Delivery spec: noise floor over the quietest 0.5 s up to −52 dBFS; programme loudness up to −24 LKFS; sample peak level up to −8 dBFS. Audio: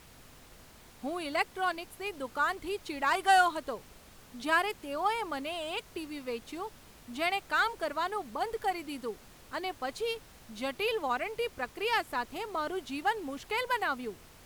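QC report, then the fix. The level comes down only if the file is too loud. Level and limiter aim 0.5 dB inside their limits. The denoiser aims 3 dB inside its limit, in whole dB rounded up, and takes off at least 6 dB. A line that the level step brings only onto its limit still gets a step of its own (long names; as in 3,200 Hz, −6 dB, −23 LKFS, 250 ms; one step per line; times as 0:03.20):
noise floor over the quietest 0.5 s −54 dBFS: in spec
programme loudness −32.5 LKFS: in spec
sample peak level −13.0 dBFS: in spec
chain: no processing needed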